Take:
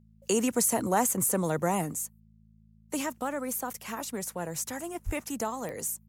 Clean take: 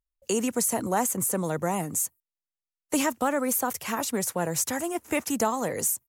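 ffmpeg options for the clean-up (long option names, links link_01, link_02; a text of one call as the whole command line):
ffmpeg -i in.wav -filter_complex "[0:a]adeclick=threshold=4,bandreject=frequency=54.2:width_type=h:width=4,bandreject=frequency=108.4:width_type=h:width=4,bandreject=frequency=162.6:width_type=h:width=4,bandreject=frequency=216.8:width_type=h:width=4,asplit=3[link_01][link_02][link_03];[link_01]afade=type=out:start_time=5.05:duration=0.02[link_04];[link_02]highpass=frequency=140:width=0.5412,highpass=frequency=140:width=1.3066,afade=type=in:start_time=5.05:duration=0.02,afade=type=out:start_time=5.17:duration=0.02[link_05];[link_03]afade=type=in:start_time=5.17:duration=0.02[link_06];[link_04][link_05][link_06]amix=inputs=3:normalize=0,asetnsamples=nb_out_samples=441:pad=0,asendcmd='1.93 volume volume 7dB',volume=0dB" out.wav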